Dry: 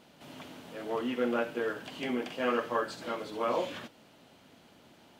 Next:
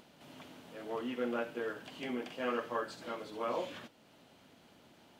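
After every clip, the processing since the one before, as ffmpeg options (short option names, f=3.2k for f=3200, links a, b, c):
-af "acompressor=mode=upward:threshold=-50dB:ratio=2.5,volume=-5.5dB"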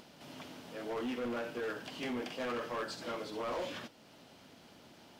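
-af "equalizer=f=5.2k:t=o:w=0.42:g=5.5,alimiter=level_in=5dB:limit=-24dB:level=0:latency=1:release=27,volume=-5dB,asoftclip=type=hard:threshold=-37dB,volume=3.5dB"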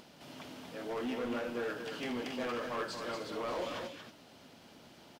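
-af "aecho=1:1:232:0.501"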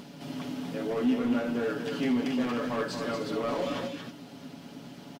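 -filter_complex "[0:a]equalizer=f=210:t=o:w=1.3:g=11.5,aecho=1:1:7.1:0.53,asplit=2[a][b];[b]acompressor=threshold=-37dB:ratio=6,volume=-2.5dB[c];[a][c]amix=inputs=2:normalize=0"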